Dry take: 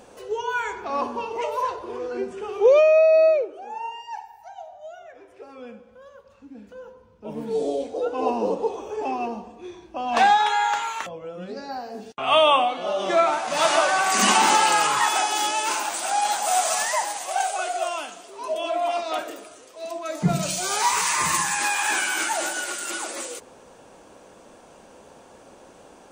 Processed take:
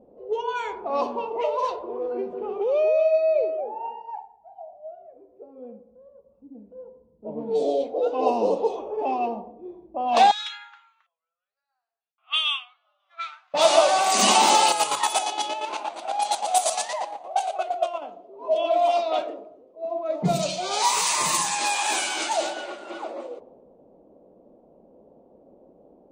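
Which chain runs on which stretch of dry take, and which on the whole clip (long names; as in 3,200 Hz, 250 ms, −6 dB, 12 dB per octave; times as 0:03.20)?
0:02.09–0:04.11: downward compressor 16 to 1, threshold −23 dBFS + single-tap delay 238 ms −7.5 dB
0:10.31–0:13.54: elliptic high-pass filter 1,400 Hz, stop band 80 dB + expander for the loud parts, over −35 dBFS
0:14.68–0:18.02: parametric band 11,000 Hz +14 dB 0.3 octaves + notch filter 5,100 Hz, Q 27 + square-wave tremolo 8.6 Hz, depth 60%, duty 35%
whole clip: low-shelf EQ 86 Hz −7.5 dB; low-pass that shuts in the quiet parts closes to 310 Hz, open at −19 dBFS; graphic EQ with 15 bands 100 Hz −10 dB, 630 Hz +6 dB, 1,600 Hz −10 dB, 4,000 Hz +5 dB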